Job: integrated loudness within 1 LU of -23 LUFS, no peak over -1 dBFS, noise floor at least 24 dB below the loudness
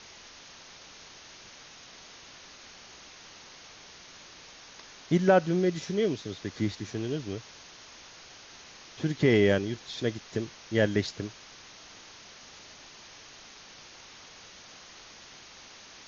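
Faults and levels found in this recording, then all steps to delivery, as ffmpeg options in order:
noise floor -50 dBFS; noise floor target -53 dBFS; loudness -28.5 LUFS; peak -10.5 dBFS; loudness target -23.0 LUFS
-> -af "afftdn=nr=6:nf=-50"
-af "volume=5.5dB"

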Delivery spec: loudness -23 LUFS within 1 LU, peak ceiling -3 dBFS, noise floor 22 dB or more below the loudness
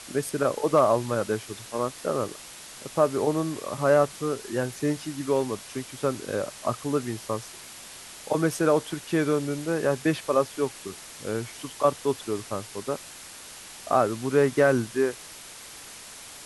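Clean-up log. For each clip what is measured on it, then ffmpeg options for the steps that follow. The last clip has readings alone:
noise floor -44 dBFS; noise floor target -49 dBFS; loudness -26.5 LUFS; peak -7.5 dBFS; loudness target -23.0 LUFS
-> -af "afftdn=nr=6:nf=-44"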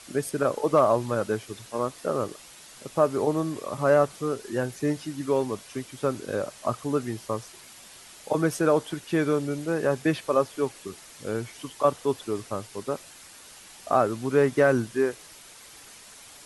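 noise floor -48 dBFS; noise floor target -49 dBFS
-> -af "afftdn=nr=6:nf=-48"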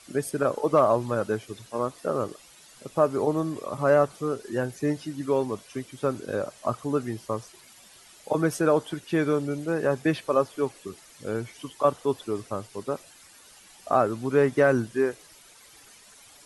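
noise floor -53 dBFS; loudness -26.5 LUFS; peak -8.0 dBFS; loudness target -23.0 LUFS
-> -af "volume=3.5dB"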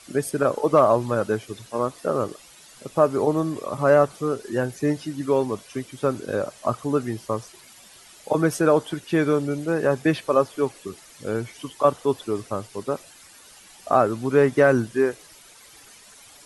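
loudness -23.0 LUFS; peak -4.5 dBFS; noise floor -49 dBFS

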